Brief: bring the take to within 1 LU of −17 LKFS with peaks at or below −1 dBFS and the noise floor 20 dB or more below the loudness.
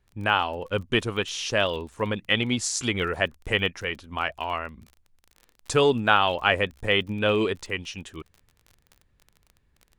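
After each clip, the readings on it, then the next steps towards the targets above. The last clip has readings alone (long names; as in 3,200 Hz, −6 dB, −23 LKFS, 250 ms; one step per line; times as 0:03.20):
crackle rate 31 per second; integrated loudness −25.0 LKFS; sample peak −4.0 dBFS; target loudness −17.0 LKFS
→ click removal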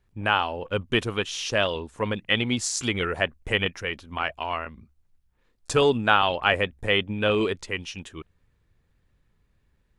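crackle rate 0 per second; integrated loudness −25.0 LKFS; sample peak −4.0 dBFS; target loudness −17.0 LKFS
→ level +8 dB
brickwall limiter −1 dBFS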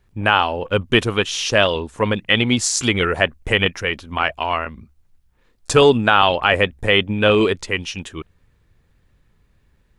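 integrated loudness −17.5 LKFS; sample peak −1.0 dBFS; background noise floor −60 dBFS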